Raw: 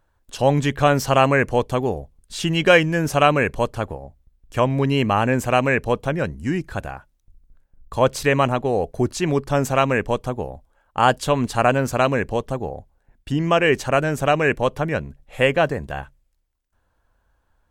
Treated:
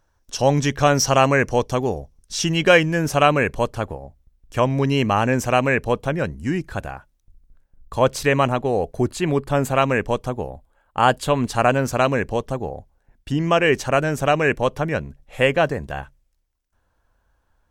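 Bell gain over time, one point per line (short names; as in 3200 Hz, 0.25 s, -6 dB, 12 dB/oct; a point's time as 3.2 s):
bell 5700 Hz 0.31 oct
+14 dB
from 2.52 s +3 dB
from 4.63 s +10 dB
from 5.52 s +1.5 dB
from 9.07 s -9 dB
from 9.82 s +2.5 dB
from 10.5 s -5 dB
from 11.48 s +3.5 dB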